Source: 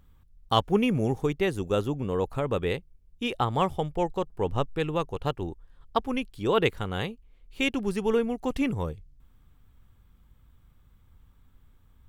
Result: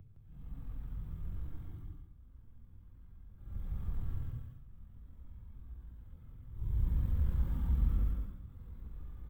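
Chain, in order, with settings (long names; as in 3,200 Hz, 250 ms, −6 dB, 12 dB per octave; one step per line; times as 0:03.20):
slices reordered back to front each 81 ms, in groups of 5
camcorder AGC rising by 15 dB per second
gate pattern "..xx...x.." 163 BPM −24 dB
extreme stretch with random phases 8.9×, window 0.10 s, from 0:09.32
low-shelf EQ 490 Hz +9 dB
tempo change 1.3×
parametric band 6,500 Hz −9 dB 2.7 octaves
single-tap delay 163 ms −5 dB
multiband upward and downward compressor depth 40%
level −7 dB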